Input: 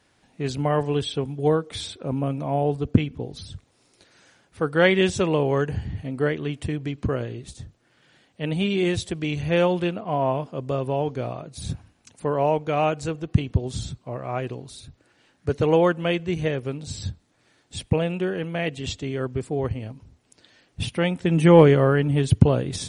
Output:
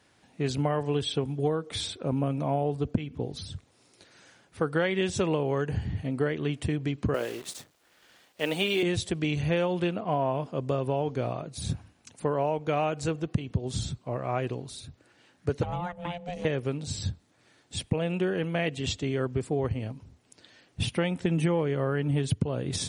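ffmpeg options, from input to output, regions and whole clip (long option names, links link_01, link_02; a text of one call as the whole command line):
ffmpeg -i in.wav -filter_complex "[0:a]asettb=1/sr,asplit=3[link_01][link_02][link_03];[link_01]atrim=end=7.144[link_04];[link_02]atrim=start=7.14:end=8.83,asetpts=PTS-STARTPTS,afade=type=in:duration=0.004:curve=qsin,afade=type=out:start_time=1.686:duration=0.004:curve=qsin,acontrast=24,highpass=410,acrusher=bits=8:dc=4:mix=0:aa=0.000001[link_05];[link_03]atrim=start=8.826[link_06];[link_04][link_05]acrossfade=duration=0.004:curve1=hsin:curve2=qsin[link_07];[link_07][link_06]acrossfade=duration=0.004:curve1=qsin:curve2=hsin,asettb=1/sr,asplit=3[link_08][link_09][link_10];[link_08]atrim=end=15.634[link_11];[link_09]atrim=start=15.63:end=16.45,asetpts=PTS-STARTPTS,afade=type=in:duration=0.004:curve=qsin,afade=type=out:start_time=0.816:duration=0.004:curve=qsin,aeval=exprs='val(0)*sin(2*PI*350*n/s)':channel_layout=same,acrossover=split=100|1100[link_12][link_13][link_14];[link_12]acompressor=threshold=-32dB:ratio=4[link_15];[link_13]acompressor=threshold=-35dB:ratio=4[link_16];[link_14]acompressor=threshold=-42dB:ratio=4[link_17];[link_15][link_16][link_17]amix=inputs=3:normalize=0[link_18];[link_10]atrim=start=16.446[link_19];[link_11][link_18]acrossfade=duration=0.004:curve1=hsin:curve2=qsin[link_20];[link_20][link_19]acrossfade=duration=0.004:curve1=qsin:curve2=hsin,highpass=59,acompressor=threshold=-22dB:ratio=20" out.wav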